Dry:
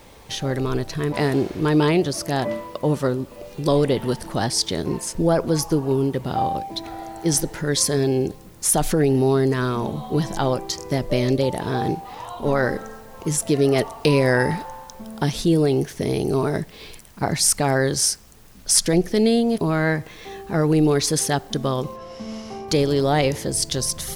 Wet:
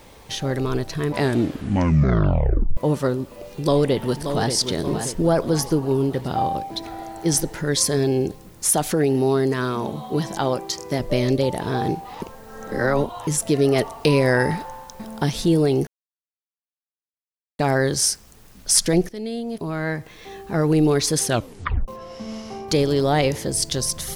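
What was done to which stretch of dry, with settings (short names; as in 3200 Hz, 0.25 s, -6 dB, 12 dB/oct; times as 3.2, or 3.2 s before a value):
1.17 tape stop 1.60 s
3.44–4.53 echo throw 0.58 s, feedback 50%, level -8 dB
8.7–11 HPF 150 Hz 6 dB/oct
12.22–13.27 reverse
14.56–15.05 echo throw 0.43 s, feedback 50%, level -8.5 dB
15.87–17.59 mute
19.09–20.72 fade in, from -15.5 dB
21.26 tape stop 0.62 s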